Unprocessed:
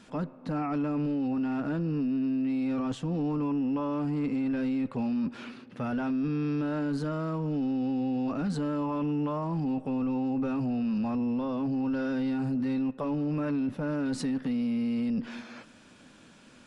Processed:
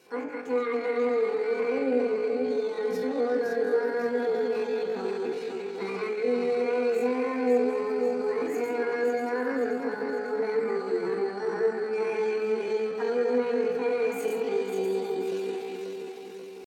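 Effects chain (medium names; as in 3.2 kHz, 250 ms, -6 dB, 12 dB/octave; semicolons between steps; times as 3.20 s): backward echo that repeats 269 ms, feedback 71%, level -4.5 dB; high-pass 82 Hz 12 dB/octave; on a send: repeats whose band climbs or falls 183 ms, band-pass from 1.3 kHz, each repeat 0.7 oct, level -1.5 dB; on the sum: FDN reverb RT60 0.54 s, low-frequency decay 1.1×, high-frequency decay 0.5×, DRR -2 dB; pitch shift +8.5 st; trim -6.5 dB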